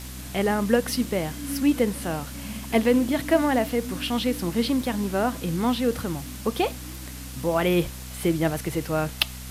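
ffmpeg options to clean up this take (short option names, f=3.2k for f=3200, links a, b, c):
-af "adeclick=t=4,bandreject=f=63.2:t=h:w=4,bandreject=f=126.4:t=h:w=4,bandreject=f=189.6:t=h:w=4,bandreject=f=252.8:t=h:w=4,afwtdn=0.0089"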